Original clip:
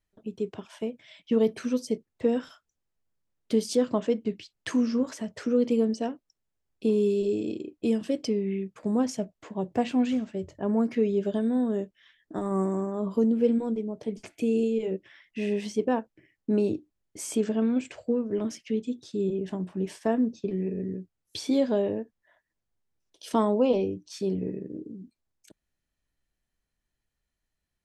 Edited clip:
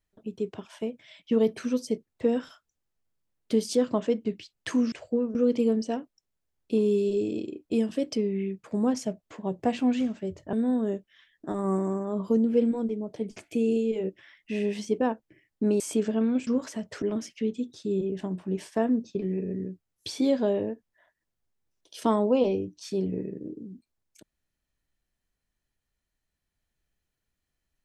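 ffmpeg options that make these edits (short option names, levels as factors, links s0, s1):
-filter_complex "[0:a]asplit=7[s0][s1][s2][s3][s4][s5][s6];[s0]atrim=end=4.922[s7];[s1]atrim=start=17.878:end=18.312[s8];[s2]atrim=start=5.468:end=10.652[s9];[s3]atrim=start=11.398:end=16.672[s10];[s4]atrim=start=17.208:end=17.882[s11];[s5]atrim=start=4.918:end=5.472[s12];[s6]atrim=start=18.308[s13];[s7][s8]acrossfade=d=0.004:c1=hsin:c2=hsin[s14];[s14][s9]acrossfade=d=0.004:c1=hsin:c2=hsin[s15];[s15][s10]acrossfade=d=0.004:c1=hsin:c2=hsin[s16];[s16][s11]acrossfade=d=0.004:c1=hsin:c2=hsin[s17];[s17][s12]acrossfade=d=0.004:c1=hsin:c2=hsin[s18];[s18][s13]acrossfade=d=0.004:c1=hsin:c2=hsin"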